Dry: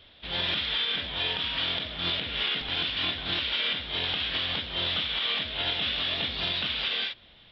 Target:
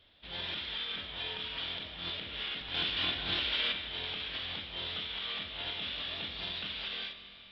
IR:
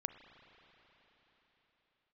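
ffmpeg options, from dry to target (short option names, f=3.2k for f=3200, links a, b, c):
-filter_complex "[0:a]asettb=1/sr,asplit=3[a][b][c];[a]atrim=end=2.744[d];[b]atrim=start=2.74:end=3.72,asetpts=PTS-STARTPTS,afade=t=in:d=0.004:c=qsin,afade=t=out:st=0.976:d=0.004:c=qsin,acontrast=51[e];[c]atrim=start=3.716[f];[d][e]acrossfade=d=0.004:c1=hsin:c2=qsin[g];[g][f]acrossfade=d=0.004:c1=qsin:c2=hsin[h];[1:a]atrim=start_sample=2205,asetrate=66150,aresample=44100[i];[h][i]afir=irnorm=-1:irlink=0,volume=-4dB"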